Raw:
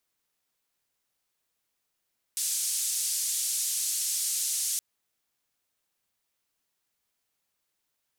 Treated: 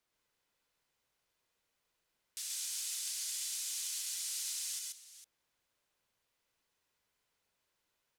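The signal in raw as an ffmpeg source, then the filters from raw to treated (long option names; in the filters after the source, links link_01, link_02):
-f lavfi -i "anoisesrc=color=white:duration=2.42:sample_rate=44100:seed=1,highpass=frequency=6900,lowpass=frequency=8800,volume=-15.4dB"
-af "highshelf=frequency=6300:gain=-10.5,alimiter=level_in=8.5dB:limit=-24dB:level=0:latency=1:release=457,volume=-8.5dB,aecho=1:1:131|133|452:0.668|0.531|0.2"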